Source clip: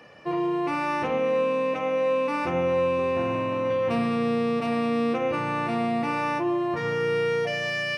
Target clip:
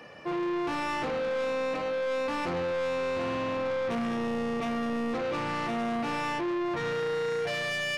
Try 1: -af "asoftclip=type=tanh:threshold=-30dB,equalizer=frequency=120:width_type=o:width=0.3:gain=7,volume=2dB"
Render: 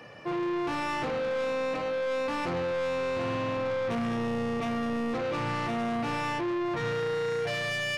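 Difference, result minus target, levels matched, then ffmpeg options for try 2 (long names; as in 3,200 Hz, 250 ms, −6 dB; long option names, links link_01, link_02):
125 Hz band +4.5 dB
-af "asoftclip=type=tanh:threshold=-30dB,equalizer=frequency=120:width_type=o:width=0.3:gain=-4,volume=2dB"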